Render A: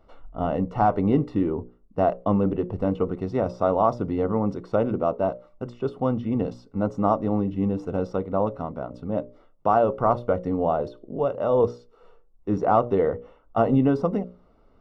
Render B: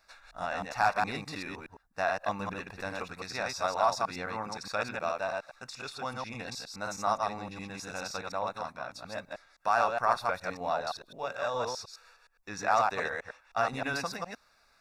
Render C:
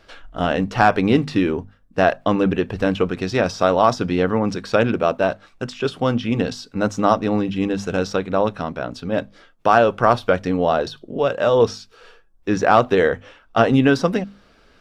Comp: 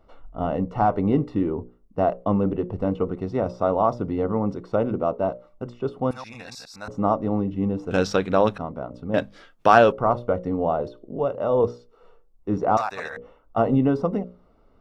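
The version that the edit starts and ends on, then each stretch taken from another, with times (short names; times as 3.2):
A
6.11–6.88 from B
7.91–8.58 from C
9.14–9.92 from C
12.77–13.17 from B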